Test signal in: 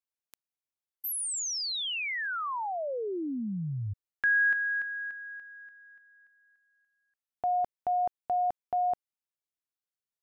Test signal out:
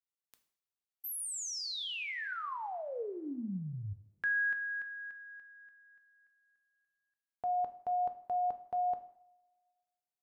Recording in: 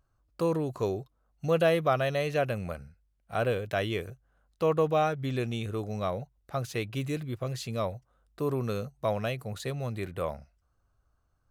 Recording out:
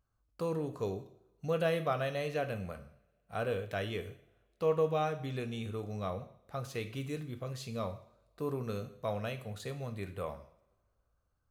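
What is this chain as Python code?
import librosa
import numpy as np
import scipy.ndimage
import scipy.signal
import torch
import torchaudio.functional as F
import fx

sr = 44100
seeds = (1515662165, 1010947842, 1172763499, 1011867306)

y = fx.rev_double_slope(x, sr, seeds[0], early_s=0.58, late_s=2.1, knee_db=-25, drr_db=7.5)
y = y * 10.0 ** (-7.0 / 20.0)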